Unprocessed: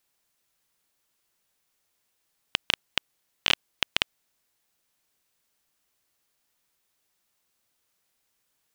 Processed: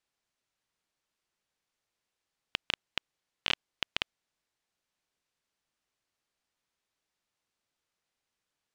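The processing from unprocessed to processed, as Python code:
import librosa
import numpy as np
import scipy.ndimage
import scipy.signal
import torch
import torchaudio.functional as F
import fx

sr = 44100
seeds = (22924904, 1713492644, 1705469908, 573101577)

y = fx.air_absorb(x, sr, metres=62.0)
y = y * 10.0 ** (-6.0 / 20.0)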